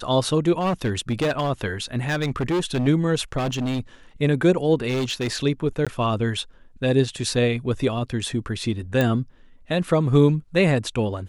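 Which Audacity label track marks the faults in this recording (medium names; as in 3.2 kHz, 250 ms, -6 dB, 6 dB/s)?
0.580000	1.510000	clipped -18 dBFS
2.060000	2.880000	clipped -19 dBFS
3.370000	3.800000	clipped -21.5 dBFS
4.880000	5.360000	clipped -20.5 dBFS
5.850000	5.870000	dropout 16 ms
9.010000	9.010000	pop -9 dBFS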